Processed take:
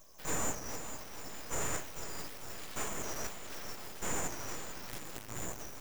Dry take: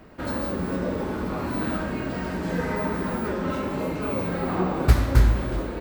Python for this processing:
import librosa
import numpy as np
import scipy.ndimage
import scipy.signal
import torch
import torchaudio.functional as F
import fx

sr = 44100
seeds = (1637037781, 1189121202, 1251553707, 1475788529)

y = fx.tube_stage(x, sr, drive_db=33.0, bias=0.3)
y = fx.rider(y, sr, range_db=10, speed_s=0.5)
y = np.diff(y, prepend=0.0)
y = np.abs(y)
y = fx.echo_feedback(y, sr, ms=448, feedback_pct=51, wet_db=-10.5)
y = y * librosa.db_to_amplitude(4.0)